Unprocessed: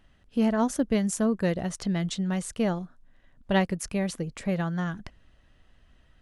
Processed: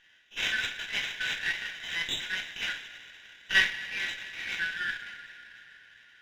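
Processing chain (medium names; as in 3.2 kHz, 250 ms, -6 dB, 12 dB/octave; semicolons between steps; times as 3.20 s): spectrogram pixelated in time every 50 ms; two-slope reverb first 0.29 s, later 4.1 s, from -19 dB, DRR -1 dB; modulation noise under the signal 14 dB; brick-wall FIR band-pass 1.4–4 kHz; sliding maximum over 3 samples; trim +8 dB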